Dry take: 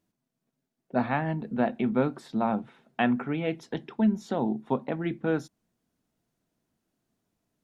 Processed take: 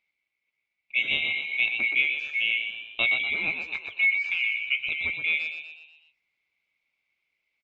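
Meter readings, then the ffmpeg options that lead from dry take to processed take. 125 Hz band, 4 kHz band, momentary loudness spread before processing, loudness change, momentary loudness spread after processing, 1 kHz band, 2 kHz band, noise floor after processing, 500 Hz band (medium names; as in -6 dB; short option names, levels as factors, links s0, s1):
under -15 dB, +17.5 dB, 6 LU, +4.5 dB, 8 LU, -16.0 dB, +15.5 dB, -82 dBFS, -17.5 dB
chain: -filter_complex "[0:a]afftfilt=real='real(if(lt(b,920),b+92*(1-2*mod(floor(b/92),2)),b),0)':imag='imag(if(lt(b,920),b+92*(1-2*mod(floor(b/92),2)),b),0)':win_size=2048:overlap=0.75,lowpass=f=4900:w=0.5412,lowpass=f=4900:w=1.3066,asplit=2[s0][s1];[s1]asplit=6[s2][s3][s4][s5][s6][s7];[s2]adelay=122,afreqshift=61,volume=0.473[s8];[s3]adelay=244,afreqshift=122,volume=0.232[s9];[s4]adelay=366,afreqshift=183,volume=0.114[s10];[s5]adelay=488,afreqshift=244,volume=0.0556[s11];[s6]adelay=610,afreqshift=305,volume=0.0272[s12];[s7]adelay=732,afreqshift=366,volume=0.0133[s13];[s8][s9][s10][s11][s12][s13]amix=inputs=6:normalize=0[s14];[s0][s14]amix=inputs=2:normalize=0"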